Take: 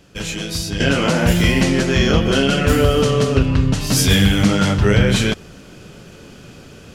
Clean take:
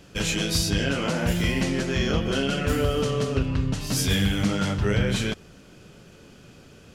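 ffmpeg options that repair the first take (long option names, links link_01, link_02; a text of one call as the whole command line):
ffmpeg -i in.wav -af "asetnsamples=nb_out_samples=441:pad=0,asendcmd='0.8 volume volume -9dB',volume=0dB" out.wav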